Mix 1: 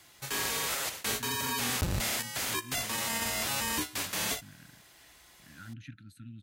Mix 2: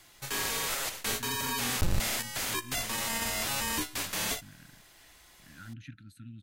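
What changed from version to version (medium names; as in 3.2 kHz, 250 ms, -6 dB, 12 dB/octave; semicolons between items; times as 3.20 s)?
master: remove high-pass 54 Hz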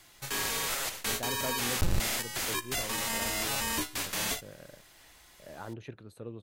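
speech: remove brick-wall FIR band-stop 310–1300 Hz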